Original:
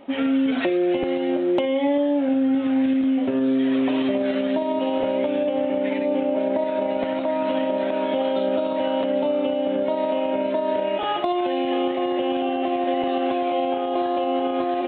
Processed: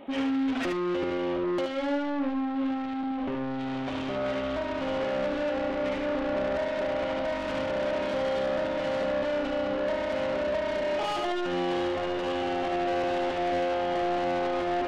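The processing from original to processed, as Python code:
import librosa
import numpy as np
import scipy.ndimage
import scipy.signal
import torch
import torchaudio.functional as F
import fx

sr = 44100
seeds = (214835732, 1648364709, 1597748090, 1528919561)

p1 = fx.rider(x, sr, range_db=10, speed_s=2.0)
p2 = 10.0 ** (-27.5 / 20.0) * np.tanh(p1 / 10.0 ** (-27.5 / 20.0))
y = p2 + fx.echo_single(p2, sr, ms=74, db=-5.5, dry=0)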